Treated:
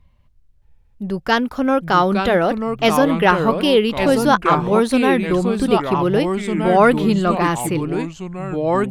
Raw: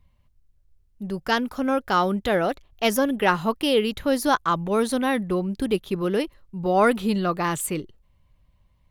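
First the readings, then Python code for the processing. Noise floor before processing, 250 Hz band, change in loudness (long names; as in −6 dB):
−63 dBFS, +7.5 dB, +6.5 dB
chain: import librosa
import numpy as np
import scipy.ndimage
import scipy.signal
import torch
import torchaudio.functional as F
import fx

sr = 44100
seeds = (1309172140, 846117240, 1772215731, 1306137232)

y = fx.high_shelf(x, sr, hz=6500.0, db=-8.5)
y = fx.echo_pitch(y, sr, ms=619, semitones=-3, count=2, db_per_echo=-6.0)
y = F.gain(torch.from_numpy(y), 6.0).numpy()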